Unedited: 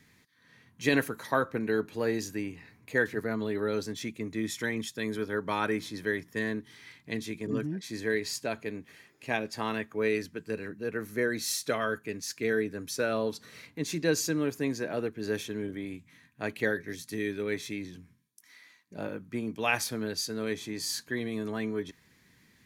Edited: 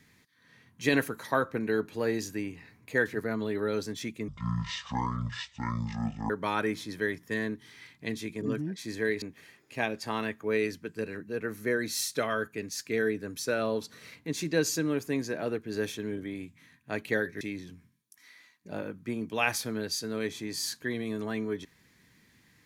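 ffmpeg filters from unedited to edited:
ffmpeg -i in.wav -filter_complex "[0:a]asplit=5[link_01][link_02][link_03][link_04][link_05];[link_01]atrim=end=4.284[link_06];[link_02]atrim=start=4.28:end=5.35,asetpts=PTS-STARTPTS,asetrate=23373,aresample=44100,atrim=end_sample=89032,asetpts=PTS-STARTPTS[link_07];[link_03]atrim=start=5.346:end=8.272[link_08];[link_04]atrim=start=8.728:end=16.922[link_09];[link_05]atrim=start=17.668[link_10];[link_06][link_07]acrossfade=duration=0.004:curve1=hsin:curve2=hsin[link_11];[link_11][link_08]acrossfade=duration=0.004:curve1=hsin:curve2=hsin[link_12];[link_12][link_09]acrossfade=duration=0.004:curve1=hsin:curve2=hsin[link_13];[link_13][link_10]acrossfade=duration=0.004:curve1=hsin:curve2=hsin" out.wav

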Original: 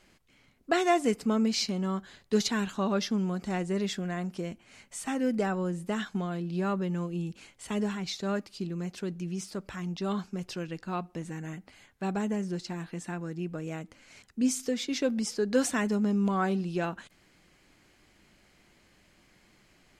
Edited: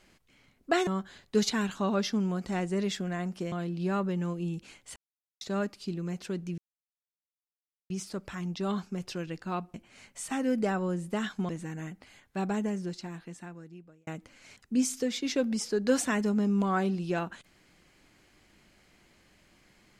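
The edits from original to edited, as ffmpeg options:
ffmpeg -i in.wav -filter_complex "[0:a]asplit=9[link_01][link_02][link_03][link_04][link_05][link_06][link_07][link_08][link_09];[link_01]atrim=end=0.872[link_10];[link_02]atrim=start=1.848:end=4.502[link_11];[link_03]atrim=start=6.248:end=7.69,asetpts=PTS-STARTPTS,afade=type=out:start_time=1.438:duration=0.004:curve=hsin[link_12];[link_04]atrim=start=7.69:end=8.14,asetpts=PTS-STARTPTS,volume=0[link_13];[link_05]atrim=start=8.14:end=9.31,asetpts=PTS-STARTPTS,afade=type=in:duration=0.004:curve=hsin,afade=type=out:start_time=1.166:duration=0.004:curve=hsin,apad=pad_dur=1.32[link_14];[link_06]atrim=start=9.31:end=11.152,asetpts=PTS-STARTPTS,afade=type=in:duration=0.004:curve=hsin[link_15];[link_07]atrim=start=4.498:end=6.252[link_16];[link_08]atrim=start=11.148:end=13.73,asetpts=PTS-STARTPTS,afade=type=out:start_time=1.092:duration=1.49[link_17];[link_09]atrim=start=13.73,asetpts=PTS-STARTPTS,afade=type=in:duration=0.004:curve=hsin[link_18];[link_10][link_11]acrossfade=duration=0.004:curve1=hsin:curve2=hsin[link_19];[link_12][link_13][link_14][link_15]concat=n=4:v=0:a=1[link_20];[link_19][link_20]acrossfade=duration=0.004:curve1=hsin:curve2=hsin[link_21];[link_21][link_16]acrossfade=duration=0.004:curve1=hsin:curve2=hsin[link_22];[link_17][link_18]concat=n=2:v=0:a=1[link_23];[link_22][link_23]acrossfade=duration=0.004:curve1=hsin:curve2=hsin" out.wav

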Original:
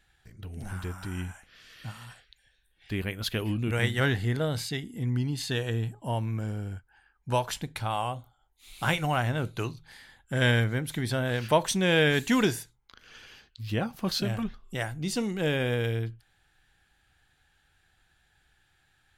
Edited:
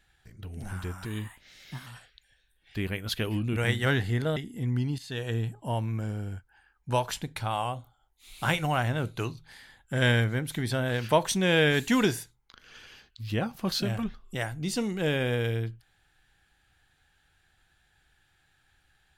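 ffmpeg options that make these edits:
ffmpeg -i in.wav -filter_complex "[0:a]asplit=5[link_01][link_02][link_03][link_04][link_05];[link_01]atrim=end=1.054[link_06];[link_02]atrim=start=1.05:end=2.01,asetpts=PTS-STARTPTS,asetrate=52038,aresample=44100[link_07];[link_03]atrim=start=2.006:end=4.512[link_08];[link_04]atrim=start=4.758:end=5.38,asetpts=PTS-STARTPTS,afade=type=out:start_time=0.618:duration=0.004:curve=hsin:silence=0.16788[link_09];[link_05]atrim=start=5.38,asetpts=PTS-STARTPTS,afade=type=in:duration=0.36:silence=0.16788[link_10];[link_06][link_07]acrossfade=duration=0.004:curve1=hsin:curve2=hsin[link_11];[link_11][link_08]acrossfade=duration=0.004:curve1=hsin:curve2=hsin[link_12];[link_09][link_10]concat=n=2:v=0:a=1[link_13];[link_12][link_13]acrossfade=duration=0.004:curve1=hsin:curve2=hsin" out.wav

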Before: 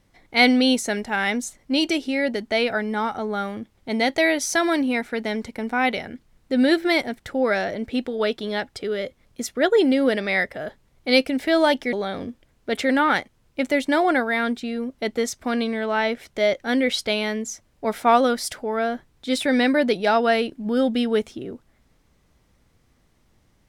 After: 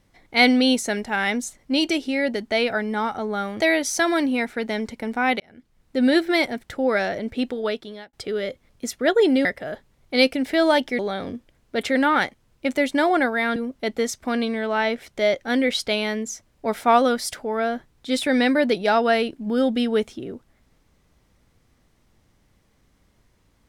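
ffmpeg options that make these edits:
ffmpeg -i in.wav -filter_complex "[0:a]asplit=6[link_01][link_02][link_03][link_04][link_05][link_06];[link_01]atrim=end=3.602[link_07];[link_02]atrim=start=4.158:end=5.96,asetpts=PTS-STARTPTS,afade=type=out:start_time=1.798:duration=0.004:curve=hsin[link_08];[link_03]atrim=start=5.96:end=8.69,asetpts=PTS-STARTPTS,afade=type=in:duration=0.59,afade=type=out:start_time=2.13:duration=0.6[link_09];[link_04]atrim=start=8.69:end=10.012,asetpts=PTS-STARTPTS,afade=type=in:duration=0.004:curve=hsin[link_10];[link_05]atrim=start=10.388:end=14.502[link_11];[link_06]atrim=start=14.748[link_12];[link_08][link_09][link_10]concat=n=3:v=0:a=1[link_13];[link_07][link_13]acrossfade=duration=0.004:curve1=hsin:curve2=hsin[link_14];[link_14][link_11]acrossfade=duration=0.004:curve1=hsin:curve2=hsin[link_15];[link_15][link_12]acrossfade=duration=0.004:curve1=hsin:curve2=hsin" out.wav

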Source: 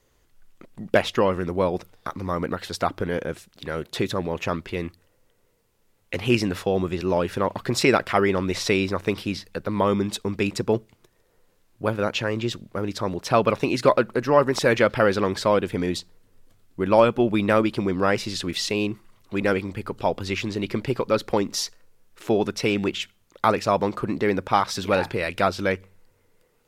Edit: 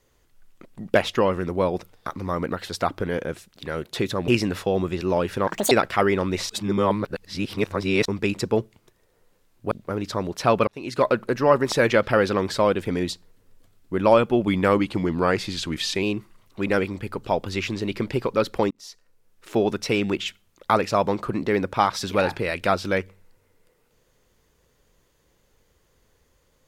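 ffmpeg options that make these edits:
ffmpeg -i in.wav -filter_complex "[0:a]asplit=11[link_01][link_02][link_03][link_04][link_05][link_06][link_07][link_08][link_09][link_10][link_11];[link_01]atrim=end=4.282[link_12];[link_02]atrim=start=6.278:end=7.474[link_13];[link_03]atrim=start=7.47:end=7.88,asetpts=PTS-STARTPTS,asetrate=74088,aresample=44100,atrim=end_sample=10762,asetpts=PTS-STARTPTS[link_14];[link_04]atrim=start=7.876:end=8.662[link_15];[link_05]atrim=start=8.658:end=10.222,asetpts=PTS-STARTPTS,areverse[link_16];[link_06]atrim=start=10.218:end=11.882[link_17];[link_07]atrim=start=12.578:end=13.54,asetpts=PTS-STARTPTS,afade=type=out:start_time=0.958:duration=0.004:curve=hsin[link_18];[link_08]atrim=start=13.54:end=17.344,asetpts=PTS-STARTPTS,afade=type=in:duration=0.49[link_19];[link_09]atrim=start=17.34:end=18.77,asetpts=PTS-STARTPTS,asetrate=40572,aresample=44100[link_20];[link_10]atrim=start=18.766:end=21.45,asetpts=PTS-STARTPTS,afade=type=out:start_time=2.68:duration=0.004:curve=hsin[link_21];[link_11]atrim=start=21.45,asetpts=PTS-STARTPTS,afade=type=in:duration=0.85[link_22];[link_12][link_13]acrossfade=duration=0.004:curve1=hsin:curve2=hsin[link_23];[link_23][link_14]acrossfade=duration=0.004:curve1=hsin:curve2=hsin[link_24];[link_24][link_15]acrossfade=duration=0.004:curve1=hsin:curve2=hsin[link_25];[link_25][link_16]acrossfade=duration=0.004:curve1=hsin:curve2=hsin[link_26];[link_26][link_17]acrossfade=duration=0.004:curve1=hsin:curve2=hsin[link_27];[link_18][link_19]concat=n=2:v=0:a=1[link_28];[link_27][link_28]acrossfade=duration=0.004:curve1=hsin:curve2=hsin[link_29];[link_29][link_20]acrossfade=duration=0.004:curve1=hsin:curve2=hsin[link_30];[link_21][link_22]concat=n=2:v=0:a=1[link_31];[link_30][link_31]acrossfade=duration=0.004:curve1=hsin:curve2=hsin" out.wav

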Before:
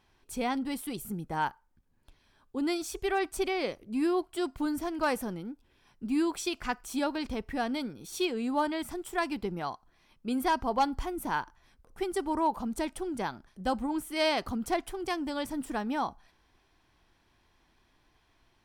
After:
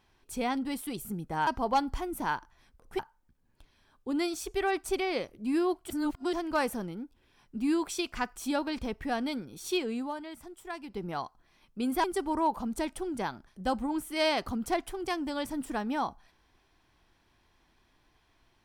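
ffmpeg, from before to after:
ffmpeg -i in.wav -filter_complex "[0:a]asplit=8[link_01][link_02][link_03][link_04][link_05][link_06][link_07][link_08];[link_01]atrim=end=1.472[link_09];[link_02]atrim=start=10.518:end=12.042[link_10];[link_03]atrim=start=1.468:end=4.382[link_11];[link_04]atrim=start=4.378:end=4.812,asetpts=PTS-STARTPTS,areverse[link_12];[link_05]atrim=start=4.808:end=8.6,asetpts=PTS-STARTPTS,afade=type=out:start_time=3.492:duration=0.3:curve=qsin:silence=0.334965[link_13];[link_06]atrim=start=8.6:end=9.36,asetpts=PTS-STARTPTS,volume=-9.5dB[link_14];[link_07]atrim=start=9.36:end=10.522,asetpts=PTS-STARTPTS,afade=type=in:duration=0.3:curve=qsin:silence=0.334965[link_15];[link_08]atrim=start=12.038[link_16];[link_09][link_10]acrossfade=duration=0.004:curve1=hsin:curve2=hsin[link_17];[link_17][link_11]acrossfade=duration=0.004:curve1=hsin:curve2=hsin[link_18];[link_18][link_12]acrossfade=duration=0.004:curve1=hsin:curve2=hsin[link_19];[link_13][link_14][link_15]concat=n=3:v=0:a=1[link_20];[link_19][link_20]acrossfade=duration=0.004:curve1=hsin:curve2=hsin[link_21];[link_21][link_16]acrossfade=duration=0.004:curve1=hsin:curve2=hsin" out.wav

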